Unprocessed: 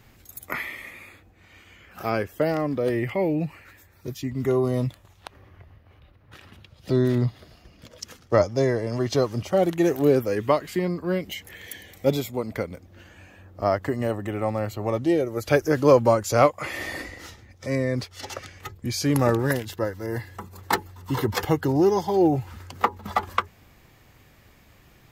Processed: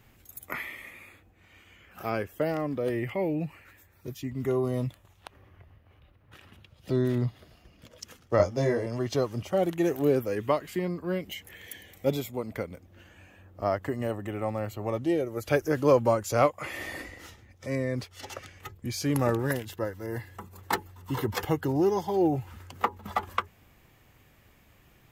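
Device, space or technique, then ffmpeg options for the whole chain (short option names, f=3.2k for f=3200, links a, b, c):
exciter from parts: -filter_complex "[0:a]asplit=2[a][b];[b]highpass=f=2.6k:w=0.5412,highpass=f=2.6k:w=1.3066,asoftclip=type=tanh:threshold=-31dB,highpass=f=2.7k:w=0.5412,highpass=f=2.7k:w=1.3066,volume=-10dB[c];[a][c]amix=inputs=2:normalize=0,asettb=1/sr,asplit=3[d][e][f];[d]atrim=end=8.374[g];[e]atrim=start=8.37:end=8.86,asetpts=PTS-STARTPTS,afade=t=in:d=0.004:c=qsin,afade=t=out:st=0.486:d=0.004:c=qsin,asplit=2[h][i];[i]adelay=21,volume=-2dB[j];[h][j]amix=inputs=2:normalize=0,atrim=end_sample=21609[k];[f]atrim=start=8.856[l];[g][k]acrossfade=d=0.004:c1=hsin:c2=qsin[m];[m][l]acrossfade=d=0.004:c1=qsin:c2=hsin,volume=-5dB"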